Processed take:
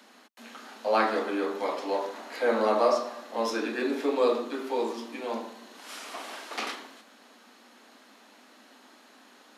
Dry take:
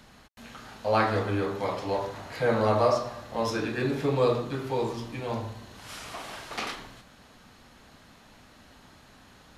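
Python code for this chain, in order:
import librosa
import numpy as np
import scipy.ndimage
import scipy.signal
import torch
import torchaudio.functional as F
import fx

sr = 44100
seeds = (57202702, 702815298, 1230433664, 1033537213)

y = scipy.signal.sosfilt(scipy.signal.butter(12, 220.0, 'highpass', fs=sr, output='sos'), x)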